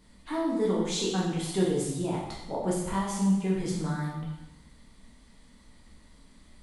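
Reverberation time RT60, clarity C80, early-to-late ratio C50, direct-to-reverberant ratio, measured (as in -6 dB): 1.0 s, 5.0 dB, 2.0 dB, -5.0 dB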